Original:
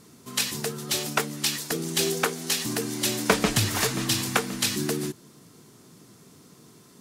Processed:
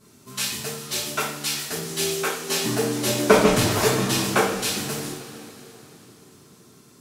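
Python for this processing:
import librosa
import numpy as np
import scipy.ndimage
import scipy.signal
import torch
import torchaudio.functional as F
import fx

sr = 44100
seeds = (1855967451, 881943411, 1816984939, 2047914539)

y = fx.peak_eq(x, sr, hz=460.0, db=10.5, octaves=2.8, at=(2.49, 4.51))
y = fx.rev_double_slope(y, sr, seeds[0], early_s=0.5, late_s=3.7, knee_db=-18, drr_db=-9.5)
y = F.gain(torch.from_numpy(y), -9.5).numpy()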